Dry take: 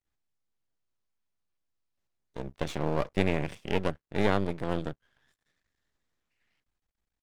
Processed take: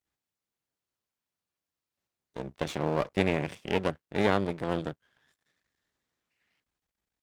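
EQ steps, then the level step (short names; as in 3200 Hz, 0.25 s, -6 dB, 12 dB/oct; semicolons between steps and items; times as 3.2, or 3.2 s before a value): HPF 120 Hz 6 dB/oct; +1.5 dB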